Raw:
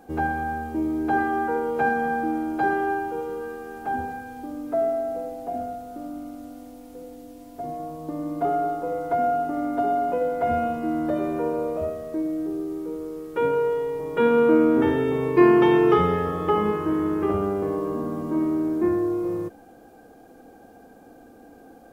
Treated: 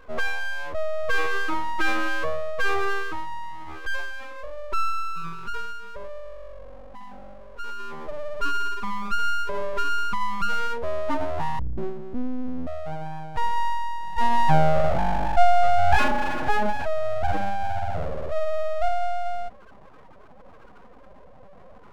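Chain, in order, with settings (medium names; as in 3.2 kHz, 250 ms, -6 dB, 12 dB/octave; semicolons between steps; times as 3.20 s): spectral contrast enhancement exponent 2.7; 11.59–12.67 s: frequency shift -440 Hz; full-wave rectifier; trim +3.5 dB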